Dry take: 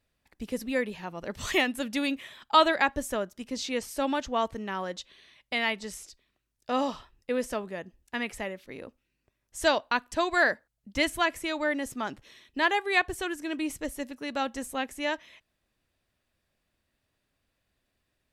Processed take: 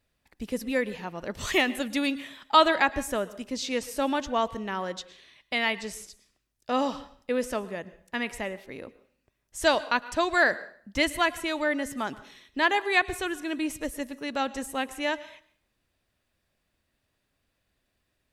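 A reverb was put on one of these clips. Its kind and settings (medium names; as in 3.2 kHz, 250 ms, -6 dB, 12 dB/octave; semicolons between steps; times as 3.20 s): plate-style reverb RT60 0.52 s, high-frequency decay 0.9×, pre-delay 95 ms, DRR 17 dB; trim +1.5 dB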